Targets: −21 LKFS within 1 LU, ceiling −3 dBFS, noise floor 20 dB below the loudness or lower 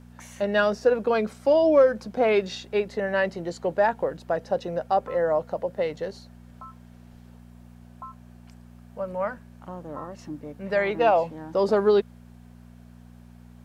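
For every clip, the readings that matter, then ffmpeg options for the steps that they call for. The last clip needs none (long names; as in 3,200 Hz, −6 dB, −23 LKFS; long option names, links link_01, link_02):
mains hum 60 Hz; hum harmonics up to 240 Hz; level of the hum −45 dBFS; integrated loudness −24.5 LKFS; sample peak −9.0 dBFS; target loudness −21.0 LKFS
→ -af "bandreject=frequency=60:width_type=h:width=4,bandreject=frequency=120:width_type=h:width=4,bandreject=frequency=180:width_type=h:width=4,bandreject=frequency=240:width_type=h:width=4"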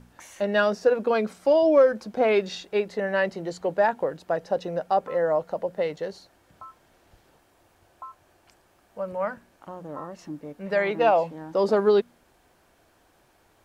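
mains hum none found; integrated loudness −24.5 LKFS; sample peak −9.0 dBFS; target loudness −21.0 LKFS
→ -af "volume=3.5dB"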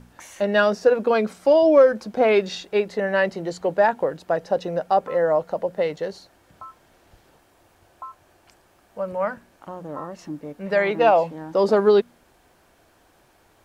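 integrated loudness −21.0 LKFS; sample peak −5.5 dBFS; background noise floor −59 dBFS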